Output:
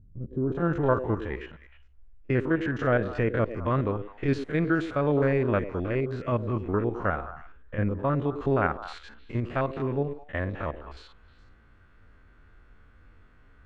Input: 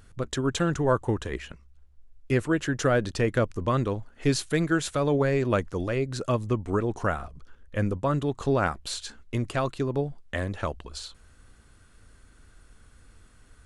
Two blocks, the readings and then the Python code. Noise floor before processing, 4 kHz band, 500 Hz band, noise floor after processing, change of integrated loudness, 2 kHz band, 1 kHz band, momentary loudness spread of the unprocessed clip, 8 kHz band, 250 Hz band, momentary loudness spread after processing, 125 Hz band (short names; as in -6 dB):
-56 dBFS, -11.5 dB, -0.5 dB, -56 dBFS, -0.5 dB, -0.5 dB, -0.5 dB, 10 LU, under -20 dB, -0.5 dB, 11 LU, -0.5 dB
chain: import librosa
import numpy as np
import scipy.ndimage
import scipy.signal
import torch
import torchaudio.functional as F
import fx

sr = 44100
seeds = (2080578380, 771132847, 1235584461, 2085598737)

y = fx.spec_steps(x, sr, hold_ms=50)
y = fx.echo_stepped(y, sr, ms=104, hz=370.0, octaves=1.4, feedback_pct=70, wet_db=-7.5)
y = fx.filter_sweep_lowpass(y, sr, from_hz=200.0, to_hz=2100.0, start_s=0.25, end_s=0.75, q=1.1)